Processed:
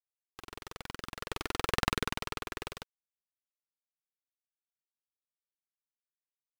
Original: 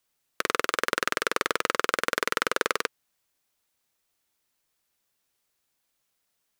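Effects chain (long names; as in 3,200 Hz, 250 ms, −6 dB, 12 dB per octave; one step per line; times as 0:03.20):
wavefolder on the positive side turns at −21.5 dBFS
source passing by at 0:01.84, 12 m/s, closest 2.3 metres
flanger 1 Hz, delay 0.4 ms, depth 2.7 ms, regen −25%
bit-depth reduction 10 bits, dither none
level +2.5 dB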